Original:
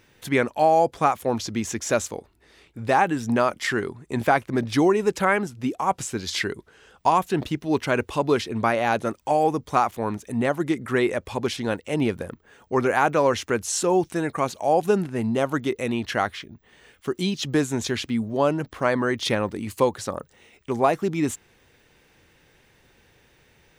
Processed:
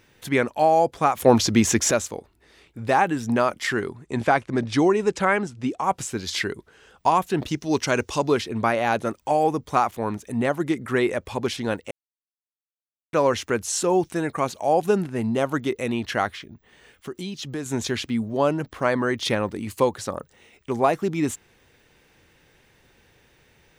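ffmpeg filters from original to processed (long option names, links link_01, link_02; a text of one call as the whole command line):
ffmpeg -i in.wav -filter_complex "[0:a]asplit=3[link_01][link_02][link_03];[link_01]afade=type=out:start_time=4.04:duration=0.02[link_04];[link_02]lowpass=frequency=9200:width=0.5412,lowpass=frequency=9200:width=1.3066,afade=type=in:start_time=4.04:duration=0.02,afade=type=out:start_time=5.82:duration=0.02[link_05];[link_03]afade=type=in:start_time=5.82:duration=0.02[link_06];[link_04][link_05][link_06]amix=inputs=3:normalize=0,asettb=1/sr,asplit=3[link_07][link_08][link_09];[link_07]atrim=end=7.484[link_10];[link_08]atrim=start=7.48:end=8.29,asetpts=PTS-STARTPTS,afade=type=in:duration=0.004:curve=qsin,afade=type=out:start_time=0.806:duration=0.004:curve=qsin,equalizer=frequency=5900:width_type=o:width=0.87:gain=12.5[link_11];[link_09]atrim=start=8.286[link_12];[link_10][link_11]acrossfade=duration=0.004:curve1=hsin:curve2=qsin[link_13];[link_13][link_12]acrossfade=duration=0.004:curve1=qsin:curve2=hsin,asettb=1/sr,asplit=3[link_14][link_15][link_16];[link_14]atrim=end=16.354[link_17];[link_15]atrim=start=16.35:end=17.66,asetpts=PTS-STARTPTS,afade=type=in:duration=0.004:curve=qsin,afade=type=out:start_time=1.306:duration=0.004:curve=qsin,acompressor=threshold=-34dB:ratio=2:attack=3.2:release=140:knee=1:detection=peak[link_18];[link_16]atrim=start=17.656[link_19];[link_17][link_18]acrossfade=duration=0.004:curve1=hsin:curve2=qsin[link_20];[link_20][link_19]acrossfade=duration=0.004:curve1=qsin:curve2=hsin,asplit=5[link_21][link_22][link_23][link_24][link_25];[link_21]atrim=end=1.172[link_26];[link_22]atrim=start=1.168:end=1.912,asetpts=PTS-STARTPTS,volume=9dB[link_27];[link_23]atrim=start=1.908:end=11.91,asetpts=PTS-STARTPTS,afade=type=out:start_time=9.998:duration=0.004:curve=hsin[link_28];[link_24]atrim=start=11.91:end=13.13,asetpts=PTS-STARTPTS,volume=0[link_29];[link_25]atrim=start=13.13,asetpts=PTS-STARTPTS,afade=type=in:duration=0.004:curve=hsin[link_30];[link_26][link_27]acrossfade=duration=0.004:curve1=hsin:curve2=hsin[link_31];[link_28][link_29][link_30]concat=n=3:v=0:a=1[link_32];[link_31][link_32]acrossfade=duration=0.004:curve1=hsin:curve2=hsin" out.wav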